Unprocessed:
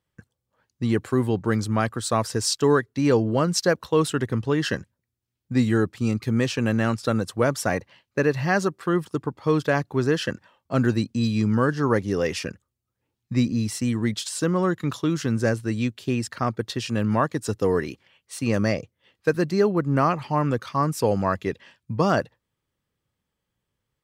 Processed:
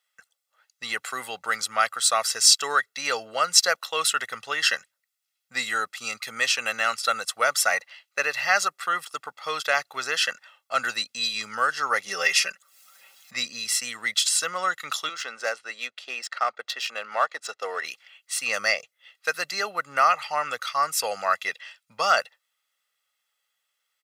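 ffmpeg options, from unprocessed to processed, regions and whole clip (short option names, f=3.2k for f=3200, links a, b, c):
-filter_complex "[0:a]asettb=1/sr,asplit=3[a][b][c];[a]atrim=end=12.064[d];[b]atrim=start=12.06:end=13.34,asetpts=PTS-STARTPTS,afade=t=in:d=0.004:c=qsin,afade=t=out:st=1.276:d=0.004:c=qsin,aecho=1:1:5.2:0.87,atrim=end_sample=56448,acompressor=mode=upward:threshold=-37dB:ratio=2.5:attack=3.2:release=140:knee=2.83:detection=peak[e];[c]atrim=start=13.336[f];[d][e]acrossfade=d=0.004:c1=hsin:c2=qsin[g];[g][f]acrossfade=d=0.004:c1=qsin:c2=hsin,asettb=1/sr,asplit=3[h][i][j];[h]atrim=end=15.094[k];[i]atrim=start=15.09:end=17.84,asetpts=PTS-STARTPTS,afade=t=in:d=0.004:c=qsin,afade=t=out:st=2.746:d=0.004:c=qsin,highpass=430,tiltshelf=f=930:g=4,adynamicsmooth=sensitivity=6:basefreq=4.3k[l];[j]atrim=start=17.836[m];[k][l]acrossfade=d=0.004:c1=hsin:c2=qsin[n];[n][m]acrossfade=d=0.004:c1=qsin:c2=hsin,highpass=1.4k,aecho=1:1:1.5:0.62,volume=7.5dB"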